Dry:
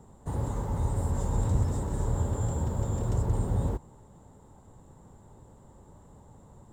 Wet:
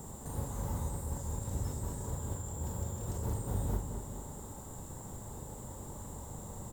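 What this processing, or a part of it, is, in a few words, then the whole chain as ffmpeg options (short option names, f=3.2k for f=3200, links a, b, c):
de-esser from a sidechain: -filter_complex "[0:a]aemphasis=mode=production:type=75fm,asplit=2[a][b];[b]highpass=4.4k,apad=whole_len=296676[c];[a][c]sidechaincompress=threshold=-55dB:ratio=12:attack=2.4:release=29,asplit=2[d][e];[e]adelay=40,volume=-6dB[f];[d][f]amix=inputs=2:normalize=0,asplit=2[g][h];[h]adelay=214,lowpass=f=2k:p=1,volume=-7dB,asplit=2[i][j];[j]adelay=214,lowpass=f=2k:p=1,volume=0.54,asplit=2[k][l];[l]adelay=214,lowpass=f=2k:p=1,volume=0.54,asplit=2[m][n];[n]adelay=214,lowpass=f=2k:p=1,volume=0.54,asplit=2[o][p];[p]adelay=214,lowpass=f=2k:p=1,volume=0.54,asplit=2[q][r];[r]adelay=214,lowpass=f=2k:p=1,volume=0.54,asplit=2[s][t];[t]adelay=214,lowpass=f=2k:p=1,volume=0.54[u];[g][i][k][m][o][q][s][u]amix=inputs=8:normalize=0,volume=6.5dB"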